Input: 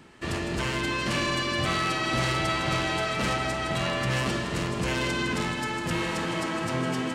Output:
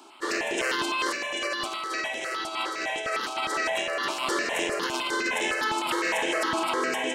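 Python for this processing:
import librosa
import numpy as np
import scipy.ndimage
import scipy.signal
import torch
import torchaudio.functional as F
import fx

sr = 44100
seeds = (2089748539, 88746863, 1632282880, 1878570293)

y = scipy.signal.sosfilt(scipy.signal.butter(4, 370.0, 'highpass', fs=sr, output='sos'), x)
y = fx.over_compress(y, sr, threshold_db=-31.0, ratio=-0.5)
y = fx.phaser_held(y, sr, hz=9.8, low_hz=500.0, high_hz=4500.0)
y = F.gain(torch.from_numpy(y), 6.5).numpy()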